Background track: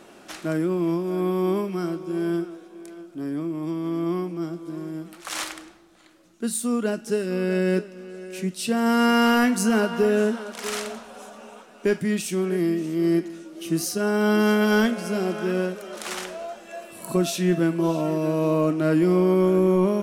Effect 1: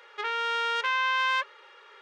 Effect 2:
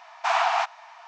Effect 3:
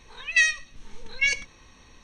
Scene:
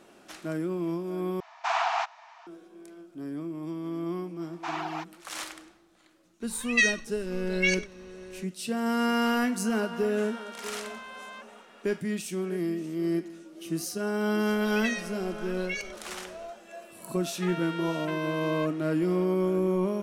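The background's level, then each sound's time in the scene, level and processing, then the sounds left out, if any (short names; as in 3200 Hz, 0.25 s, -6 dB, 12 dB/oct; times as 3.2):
background track -7 dB
1.4 replace with 2 -4.5 dB
4.39 add 2 -10.5 dB + reverb removal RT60 0.74 s
6.41 add 3 -3 dB
10 add 1 -4.5 dB + compressor 4:1, threshold -38 dBFS
14.48 add 3 -6.5 dB + compressor 2:1, threshold -27 dBFS
17.24 add 1 -2 dB + compressor, threshold -31 dBFS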